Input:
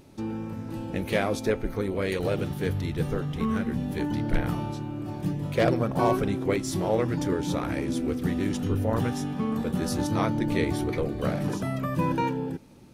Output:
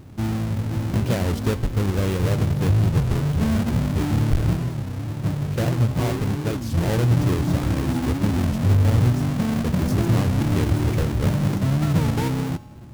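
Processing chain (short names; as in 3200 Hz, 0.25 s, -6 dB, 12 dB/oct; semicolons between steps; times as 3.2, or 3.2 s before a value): half-waves squared off; 4.56–6.78 flange 1.7 Hz, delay 5.4 ms, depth 9.8 ms, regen +73%; compressor 2:1, threshold -24 dBFS, peak gain reduction 6 dB; bell 82 Hz +13.5 dB 2.5 oct; resonator 120 Hz, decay 1.3 s, harmonics odd, mix 60%; record warp 33 1/3 rpm, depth 250 cents; gain +5 dB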